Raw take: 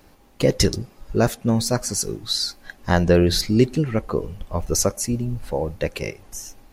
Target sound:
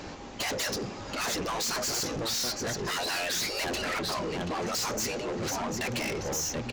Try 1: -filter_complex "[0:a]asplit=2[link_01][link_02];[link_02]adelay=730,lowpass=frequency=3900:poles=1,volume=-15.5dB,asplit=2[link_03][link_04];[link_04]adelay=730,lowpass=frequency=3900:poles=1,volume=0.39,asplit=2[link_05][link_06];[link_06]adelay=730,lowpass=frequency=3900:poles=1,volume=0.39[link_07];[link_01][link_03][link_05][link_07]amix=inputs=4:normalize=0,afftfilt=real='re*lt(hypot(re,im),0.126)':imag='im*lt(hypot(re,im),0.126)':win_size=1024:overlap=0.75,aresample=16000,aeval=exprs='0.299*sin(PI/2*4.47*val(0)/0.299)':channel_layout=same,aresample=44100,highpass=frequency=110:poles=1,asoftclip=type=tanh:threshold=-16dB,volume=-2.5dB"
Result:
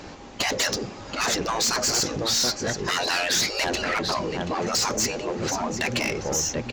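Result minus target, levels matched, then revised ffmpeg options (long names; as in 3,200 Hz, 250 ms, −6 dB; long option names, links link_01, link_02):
soft clipping: distortion −8 dB
-filter_complex "[0:a]asplit=2[link_01][link_02];[link_02]adelay=730,lowpass=frequency=3900:poles=1,volume=-15.5dB,asplit=2[link_03][link_04];[link_04]adelay=730,lowpass=frequency=3900:poles=1,volume=0.39,asplit=2[link_05][link_06];[link_06]adelay=730,lowpass=frequency=3900:poles=1,volume=0.39[link_07];[link_01][link_03][link_05][link_07]amix=inputs=4:normalize=0,afftfilt=real='re*lt(hypot(re,im),0.126)':imag='im*lt(hypot(re,im),0.126)':win_size=1024:overlap=0.75,aresample=16000,aeval=exprs='0.299*sin(PI/2*4.47*val(0)/0.299)':channel_layout=same,aresample=44100,highpass=frequency=110:poles=1,asoftclip=type=tanh:threshold=-26.5dB,volume=-2.5dB"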